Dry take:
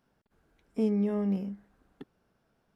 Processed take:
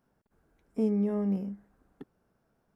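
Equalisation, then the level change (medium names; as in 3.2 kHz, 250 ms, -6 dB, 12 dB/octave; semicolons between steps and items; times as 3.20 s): peaking EQ 3.4 kHz -7.5 dB 1.6 oct; 0.0 dB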